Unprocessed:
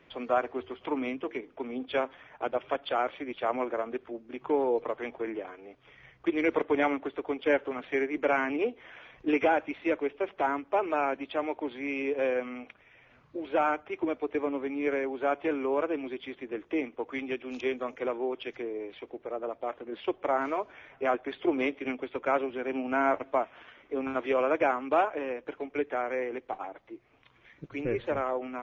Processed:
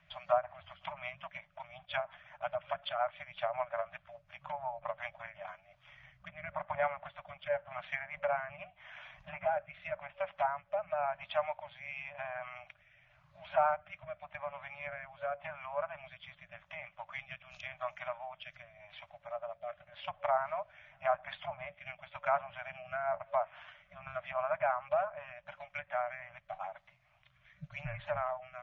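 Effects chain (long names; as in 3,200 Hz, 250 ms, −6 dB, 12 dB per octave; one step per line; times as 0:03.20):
treble cut that deepens with the level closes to 1,400 Hz, closed at −24 dBFS
brick-wall band-stop 190–570 Hz
rotating-speaker cabinet horn 5.5 Hz, later 0.9 Hz, at 0:05.06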